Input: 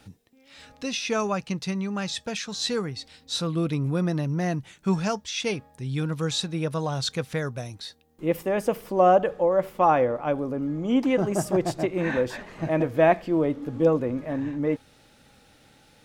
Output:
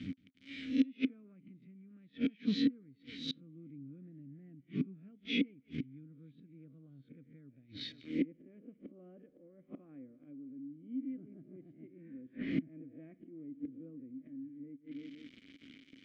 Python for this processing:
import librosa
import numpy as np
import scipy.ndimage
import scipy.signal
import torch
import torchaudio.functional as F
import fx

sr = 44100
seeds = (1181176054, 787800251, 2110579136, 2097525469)

p1 = fx.spec_swells(x, sr, rise_s=0.41)
p2 = fx.quant_dither(p1, sr, seeds[0], bits=8, dither='none')
p3 = scipy.signal.sosfilt(scipy.signal.butter(2, 5800.0, 'lowpass', fs=sr, output='sos'), p2)
p4 = p3 + fx.echo_feedback(p3, sr, ms=172, feedback_pct=54, wet_db=-24.0, dry=0)
p5 = fx.dynamic_eq(p4, sr, hz=140.0, q=2.8, threshold_db=-41.0, ratio=4.0, max_db=6)
p6 = fx.env_lowpass_down(p5, sr, base_hz=1200.0, full_db=-23.5)
p7 = fx.low_shelf(p6, sr, hz=210.0, db=10.5)
p8 = fx.gate_flip(p7, sr, shuts_db=-20.0, range_db=-31)
p9 = fx.vowel_filter(p8, sr, vowel='i')
y = p9 * 10.0 ** (11.5 / 20.0)